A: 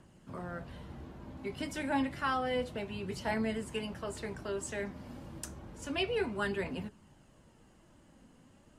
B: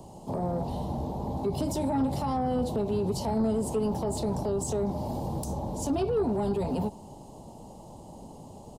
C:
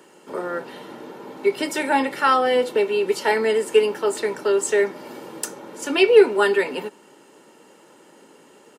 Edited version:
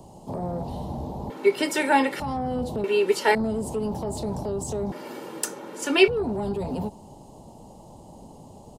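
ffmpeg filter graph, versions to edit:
-filter_complex "[2:a]asplit=3[s0][s1][s2];[1:a]asplit=4[s3][s4][s5][s6];[s3]atrim=end=1.302[s7];[s0]atrim=start=1.298:end=2.202[s8];[s4]atrim=start=2.198:end=2.842[s9];[s1]atrim=start=2.838:end=3.352[s10];[s5]atrim=start=3.348:end=4.922[s11];[s2]atrim=start=4.918:end=6.082[s12];[s6]atrim=start=6.078[s13];[s7][s8]acrossfade=d=0.004:c1=hsin:c2=hsin[s14];[s14][s9]acrossfade=d=0.004:c1=hsin:c2=hsin[s15];[s15][s10]acrossfade=d=0.004:c1=hsin:c2=hsin[s16];[s16][s11]acrossfade=d=0.004:c1=hsin:c2=hsin[s17];[s17][s12]acrossfade=d=0.004:c1=hsin:c2=hsin[s18];[s18][s13]acrossfade=d=0.004:c1=hsin:c2=hsin"

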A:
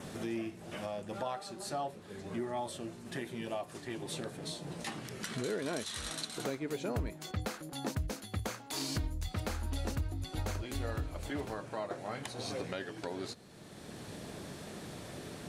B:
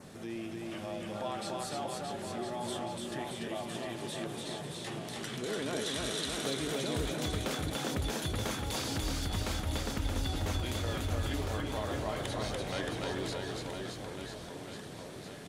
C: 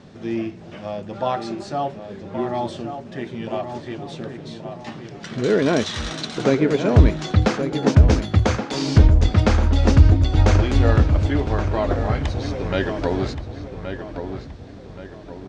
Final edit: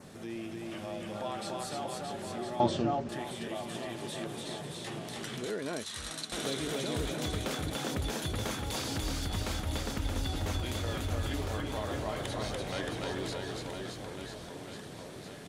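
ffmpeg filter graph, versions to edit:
-filter_complex "[1:a]asplit=3[s0][s1][s2];[s0]atrim=end=2.602[s3];[2:a]atrim=start=2.598:end=3.092[s4];[s1]atrim=start=3.088:end=5.502[s5];[0:a]atrim=start=5.498:end=6.322[s6];[s2]atrim=start=6.318[s7];[s3][s4]acrossfade=d=0.004:c1=hsin:c2=hsin[s8];[s8][s5]acrossfade=d=0.004:c1=hsin:c2=hsin[s9];[s9][s6]acrossfade=d=0.004:c1=hsin:c2=hsin[s10];[s10][s7]acrossfade=d=0.004:c1=hsin:c2=hsin"

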